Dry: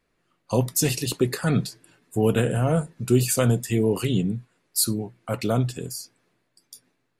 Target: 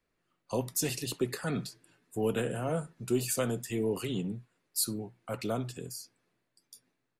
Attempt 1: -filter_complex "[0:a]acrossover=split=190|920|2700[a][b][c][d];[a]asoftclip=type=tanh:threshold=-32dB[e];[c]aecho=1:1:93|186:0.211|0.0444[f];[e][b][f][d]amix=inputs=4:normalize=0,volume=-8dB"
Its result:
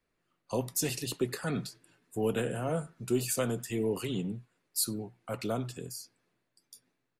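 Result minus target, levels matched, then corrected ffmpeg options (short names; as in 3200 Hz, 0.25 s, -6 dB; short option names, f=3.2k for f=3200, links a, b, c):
echo 26 ms late
-filter_complex "[0:a]acrossover=split=190|920|2700[a][b][c][d];[a]asoftclip=type=tanh:threshold=-32dB[e];[c]aecho=1:1:67|134:0.211|0.0444[f];[e][b][f][d]amix=inputs=4:normalize=0,volume=-8dB"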